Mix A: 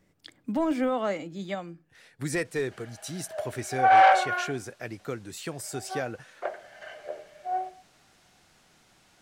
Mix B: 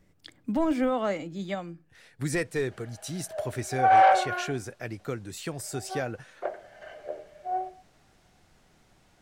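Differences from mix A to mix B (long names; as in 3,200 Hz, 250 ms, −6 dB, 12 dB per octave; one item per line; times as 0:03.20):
speech: add low-shelf EQ 84 Hz +11 dB
background: add tilt shelving filter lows +6 dB, about 670 Hz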